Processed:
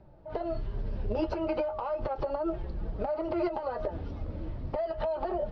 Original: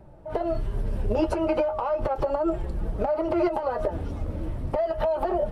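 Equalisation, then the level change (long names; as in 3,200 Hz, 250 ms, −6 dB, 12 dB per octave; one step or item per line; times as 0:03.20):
low-pass with resonance 4,800 Hz, resonance Q 2.7
high-frequency loss of the air 160 metres
−6.0 dB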